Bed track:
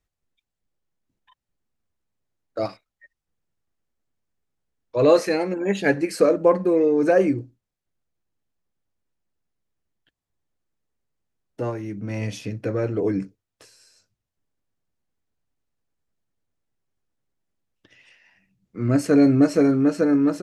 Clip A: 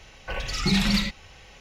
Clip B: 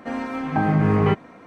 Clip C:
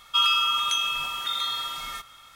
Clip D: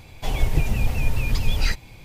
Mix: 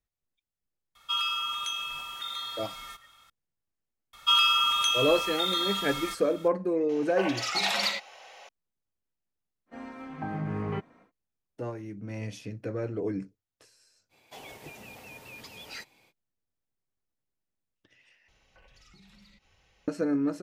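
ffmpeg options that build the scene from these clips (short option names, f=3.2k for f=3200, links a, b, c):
-filter_complex "[3:a]asplit=2[a][b];[1:a]asplit=2[c][d];[0:a]volume=-8.5dB[e];[c]highpass=f=660:t=q:w=3[f];[4:a]highpass=310[g];[d]acompressor=threshold=-38dB:ratio=6:attack=3.2:release=140:knee=1:detection=peak[h];[e]asplit=2[i][j];[i]atrim=end=18.284[k];[h]atrim=end=1.6,asetpts=PTS-STARTPTS,volume=-17.5dB[l];[j]atrim=start=19.876[m];[a]atrim=end=2.35,asetpts=PTS-STARTPTS,volume=-8dB,afade=t=in:d=0.004:c=hsin,afade=t=out:st=2.346:d=0.004:c=hsin,adelay=950[n];[b]atrim=end=2.35,asetpts=PTS-STARTPTS,volume=-0.5dB,afade=t=in:d=0.004:c=hsin,afade=t=out:st=2.346:d=0.004:c=hsin,adelay=182133S[o];[f]atrim=end=1.6,asetpts=PTS-STARTPTS,volume=-1.5dB,afade=t=in:d=0.004:c=hsin,afade=t=out:st=1.596:d=0.004:c=hsin,adelay=6890[p];[2:a]atrim=end=1.46,asetpts=PTS-STARTPTS,volume=-14dB,afade=t=in:d=0.1,afade=t=out:st=1.36:d=0.1,adelay=9660[q];[g]atrim=end=2.04,asetpts=PTS-STARTPTS,volume=-13dB,afade=t=in:d=0.05,afade=t=out:st=1.99:d=0.05,adelay=14090[r];[k][l]acrossfade=d=0.004:c1=hsin:c2=hsin[s];[s][m]acrossfade=d=0.004:c1=hsin:c2=hsin[t];[t][n][o][p][q][r]amix=inputs=6:normalize=0"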